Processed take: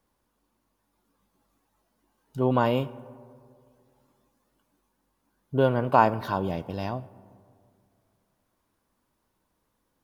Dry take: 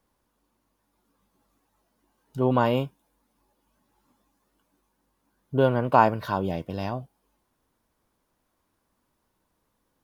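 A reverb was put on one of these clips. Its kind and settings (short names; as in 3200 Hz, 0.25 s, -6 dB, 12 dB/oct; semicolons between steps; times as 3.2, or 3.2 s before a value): digital reverb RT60 2.3 s, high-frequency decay 0.3×, pre-delay 25 ms, DRR 19 dB; gain -1 dB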